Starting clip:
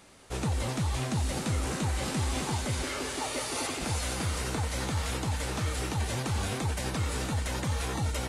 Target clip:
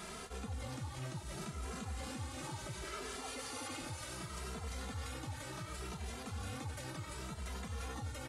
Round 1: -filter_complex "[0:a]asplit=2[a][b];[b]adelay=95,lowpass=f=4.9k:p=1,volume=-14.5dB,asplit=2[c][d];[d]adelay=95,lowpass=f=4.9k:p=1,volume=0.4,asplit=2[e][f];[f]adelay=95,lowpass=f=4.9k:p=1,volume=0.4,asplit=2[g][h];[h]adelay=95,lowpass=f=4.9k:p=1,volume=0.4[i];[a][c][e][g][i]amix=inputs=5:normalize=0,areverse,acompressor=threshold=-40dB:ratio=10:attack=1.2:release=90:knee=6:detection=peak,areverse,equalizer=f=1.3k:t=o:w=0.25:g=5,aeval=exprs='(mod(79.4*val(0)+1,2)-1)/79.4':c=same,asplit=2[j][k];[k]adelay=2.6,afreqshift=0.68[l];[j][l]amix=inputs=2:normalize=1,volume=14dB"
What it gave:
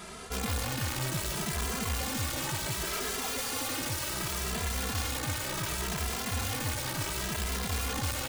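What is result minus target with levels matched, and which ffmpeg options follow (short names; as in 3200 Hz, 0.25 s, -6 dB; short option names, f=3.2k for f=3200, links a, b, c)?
compressor: peak gain reduction -11 dB
-filter_complex "[0:a]asplit=2[a][b];[b]adelay=95,lowpass=f=4.9k:p=1,volume=-14.5dB,asplit=2[c][d];[d]adelay=95,lowpass=f=4.9k:p=1,volume=0.4,asplit=2[e][f];[f]adelay=95,lowpass=f=4.9k:p=1,volume=0.4,asplit=2[g][h];[h]adelay=95,lowpass=f=4.9k:p=1,volume=0.4[i];[a][c][e][g][i]amix=inputs=5:normalize=0,areverse,acompressor=threshold=-52dB:ratio=10:attack=1.2:release=90:knee=6:detection=peak,areverse,equalizer=f=1.3k:t=o:w=0.25:g=5,aeval=exprs='(mod(79.4*val(0)+1,2)-1)/79.4':c=same,asplit=2[j][k];[k]adelay=2.6,afreqshift=0.68[l];[j][l]amix=inputs=2:normalize=1,volume=14dB"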